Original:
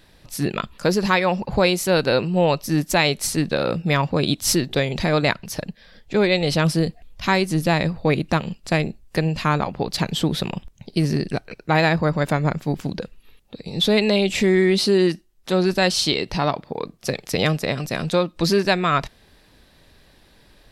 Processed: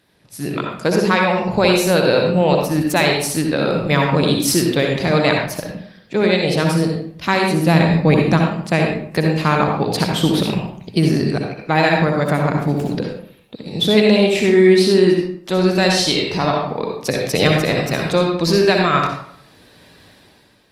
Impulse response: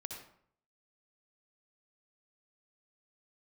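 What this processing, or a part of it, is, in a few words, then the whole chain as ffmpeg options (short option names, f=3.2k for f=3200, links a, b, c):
far-field microphone of a smart speaker: -filter_complex "[0:a]asplit=3[a][b][c];[a]afade=t=out:st=7.67:d=0.02[d];[b]adynamicequalizer=threshold=0.02:dfrequency=170:dqfactor=0.99:tfrequency=170:tqfactor=0.99:attack=5:release=100:ratio=0.375:range=3:mode=boostabove:tftype=bell,afade=t=in:st=7.67:d=0.02,afade=t=out:st=8.37:d=0.02[e];[c]afade=t=in:st=8.37:d=0.02[f];[d][e][f]amix=inputs=3:normalize=0[g];[1:a]atrim=start_sample=2205[h];[g][h]afir=irnorm=-1:irlink=0,highpass=110,dynaudnorm=f=170:g=7:m=11dB" -ar 48000 -c:a libopus -b:a 32k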